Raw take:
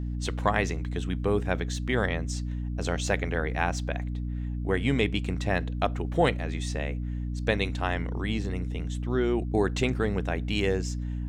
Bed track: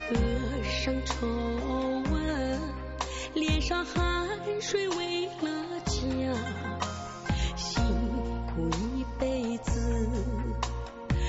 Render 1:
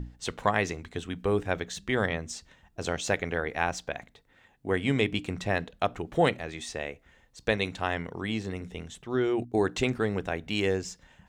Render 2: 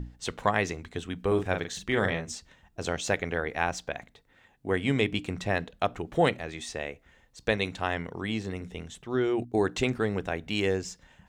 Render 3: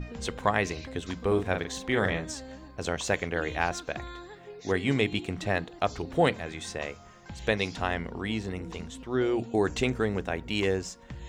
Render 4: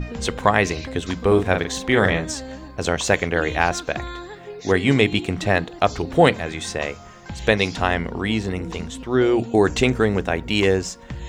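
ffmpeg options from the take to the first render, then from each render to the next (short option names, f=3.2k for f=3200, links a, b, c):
-af "bandreject=f=60:t=h:w=6,bandreject=f=120:t=h:w=6,bandreject=f=180:t=h:w=6,bandreject=f=240:t=h:w=6,bandreject=f=300:t=h:w=6"
-filter_complex "[0:a]asettb=1/sr,asplit=3[a][b][c];[a]atrim=end=1.274[d];[b]atrim=start=1.27:end=2.35,asetpts=PTS-STARTPTS,afade=t=in:d=0.004:c=qsin,afade=t=out:st=1.076:d=0.004:c=qsin,asplit=2[e][f];[f]adelay=42,volume=-6dB[g];[e][g]amix=inputs=2:normalize=0,atrim=end_sample=47628[h];[c]atrim=start=2.346[i];[d][h]acrossfade=d=0.004:c1=hsin:c2=qsin[j];[j][i]acrossfade=d=0.004:c1=qsin:c2=hsin"
-filter_complex "[1:a]volume=-13.5dB[a];[0:a][a]amix=inputs=2:normalize=0"
-af "volume=9dB,alimiter=limit=-1dB:level=0:latency=1"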